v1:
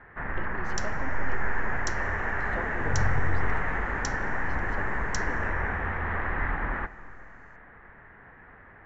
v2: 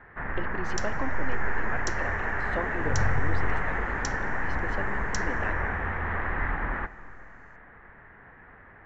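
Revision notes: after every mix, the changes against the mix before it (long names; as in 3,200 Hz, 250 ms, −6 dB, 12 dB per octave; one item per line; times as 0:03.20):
speech +6.0 dB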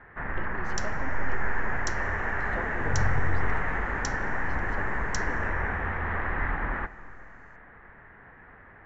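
speech −6.5 dB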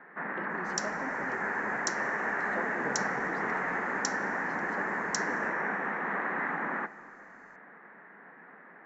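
first sound: add linear-phase brick-wall high-pass 160 Hz
second sound: add high-shelf EQ 4,400 Hz +5.5 dB
master: add parametric band 3,100 Hz −6.5 dB 0.58 octaves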